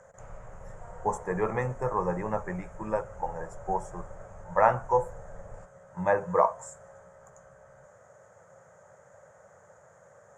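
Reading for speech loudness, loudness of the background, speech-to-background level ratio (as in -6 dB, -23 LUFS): -29.5 LUFS, -49.0 LUFS, 19.5 dB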